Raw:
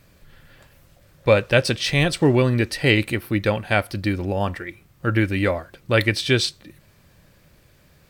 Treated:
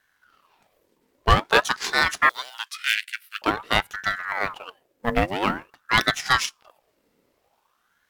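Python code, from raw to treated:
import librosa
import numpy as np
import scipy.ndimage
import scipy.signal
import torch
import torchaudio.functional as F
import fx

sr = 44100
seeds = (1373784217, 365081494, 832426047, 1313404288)

y = fx.law_mismatch(x, sr, coded='A')
y = fx.cheby_harmonics(y, sr, harmonics=(5, 7), levels_db=(-13, -14), full_scale_db=-2.5)
y = fx.cheby1_highpass(y, sr, hz=1800.0, order=6, at=(2.29, 3.42))
y = fx.ring_lfo(y, sr, carrier_hz=1000.0, swing_pct=65, hz=0.49)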